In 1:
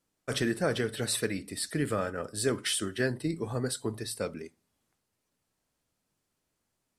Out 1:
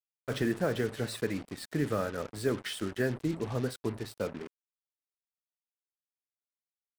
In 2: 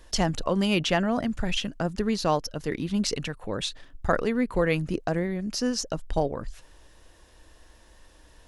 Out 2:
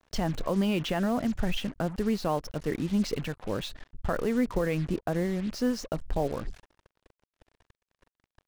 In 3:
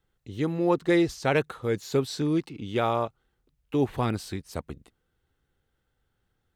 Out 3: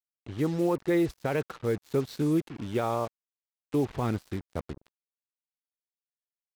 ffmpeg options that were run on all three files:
-af "lowpass=f=1700:p=1,alimiter=limit=0.126:level=0:latency=1:release=76,acrusher=bits=6:mix=0:aa=0.5"

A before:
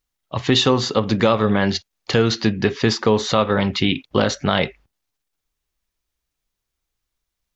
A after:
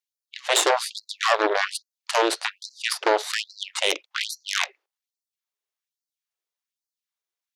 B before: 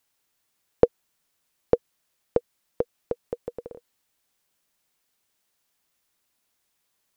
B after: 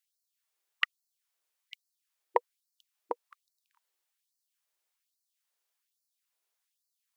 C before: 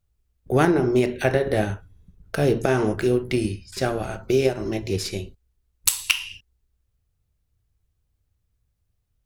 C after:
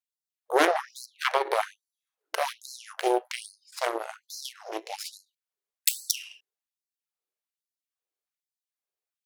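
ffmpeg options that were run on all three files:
-af "aeval=exprs='0.891*(cos(1*acos(clip(val(0)/0.891,-1,1)))-cos(1*PI/2))+0.158*(cos(3*acos(clip(val(0)/0.891,-1,1)))-cos(3*PI/2))+0.0316*(cos(5*acos(clip(val(0)/0.891,-1,1)))-cos(5*PI/2))+0.398*(cos(6*acos(clip(val(0)/0.891,-1,1)))-cos(6*PI/2))':c=same,afftfilt=real='re*gte(b*sr/1024,300*pow(4100/300,0.5+0.5*sin(2*PI*1.2*pts/sr)))':imag='im*gte(b*sr/1024,300*pow(4100/300,0.5+0.5*sin(2*PI*1.2*pts/sr)))':win_size=1024:overlap=0.75,volume=0.562"

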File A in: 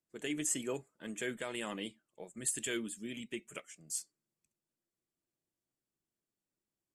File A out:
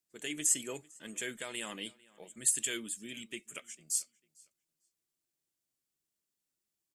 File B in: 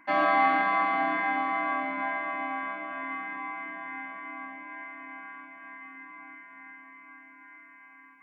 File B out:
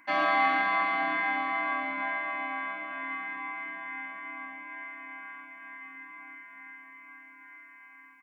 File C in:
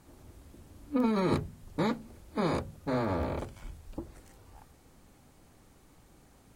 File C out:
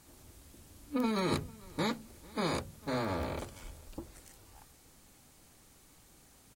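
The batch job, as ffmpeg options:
-filter_complex "[0:a]highshelf=f=2200:g=11.5,asplit=2[s0][s1];[s1]adelay=449,lowpass=f=4800:p=1,volume=0.0708,asplit=2[s2][s3];[s3]adelay=449,lowpass=f=4800:p=1,volume=0.24[s4];[s0][s2][s4]amix=inputs=3:normalize=0,volume=0.596"

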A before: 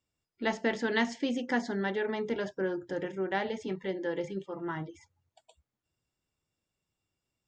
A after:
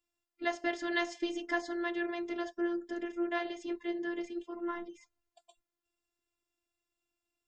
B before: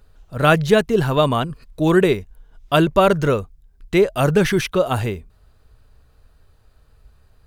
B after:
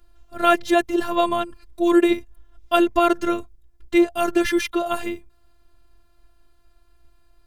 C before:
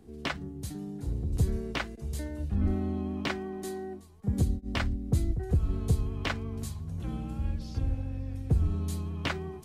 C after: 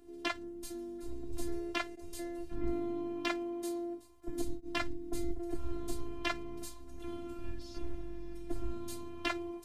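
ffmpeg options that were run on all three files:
-af "equalizer=f=69:w=2.7:g=-11.5,afftfilt=real='hypot(re,im)*cos(PI*b)':imag='0':win_size=512:overlap=0.75,volume=1.12"

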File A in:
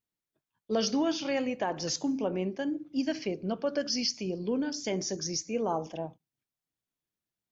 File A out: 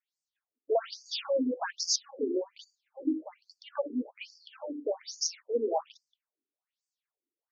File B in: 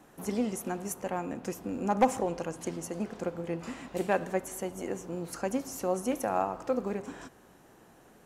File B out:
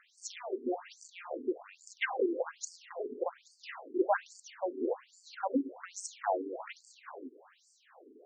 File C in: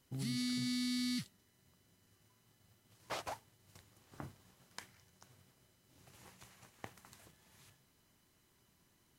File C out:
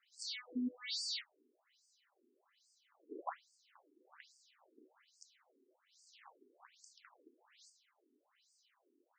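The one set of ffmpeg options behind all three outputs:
-af "aeval=exprs='0.237*(cos(1*acos(clip(val(0)/0.237,-1,1)))-cos(1*PI/2))+0.0188*(cos(4*acos(clip(val(0)/0.237,-1,1)))-cos(4*PI/2))+0.075*(cos(5*acos(clip(val(0)/0.237,-1,1)))-cos(5*PI/2))+0.0211*(cos(7*acos(clip(val(0)/0.237,-1,1)))-cos(7*PI/2))+0.0119*(cos(8*acos(clip(val(0)/0.237,-1,1)))-cos(8*PI/2))':c=same,afftfilt=real='re*between(b*sr/1024,310*pow(6400/310,0.5+0.5*sin(2*PI*1.2*pts/sr))/1.41,310*pow(6400/310,0.5+0.5*sin(2*PI*1.2*pts/sr))*1.41)':imag='im*between(b*sr/1024,310*pow(6400/310,0.5+0.5*sin(2*PI*1.2*pts/sr))/1.41,310*pow(6400/310,0.5+0.5*sin(2*PI*1.2*pts/sr))*1.41)':win_size=1024:overlap=0.75"

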